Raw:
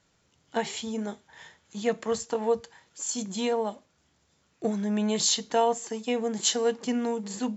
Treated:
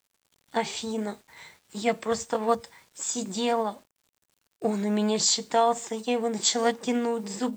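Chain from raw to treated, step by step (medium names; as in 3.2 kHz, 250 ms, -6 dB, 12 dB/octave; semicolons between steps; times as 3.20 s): word length cut 10-bit, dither none; formant shift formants +2 st; trim +1.5 dB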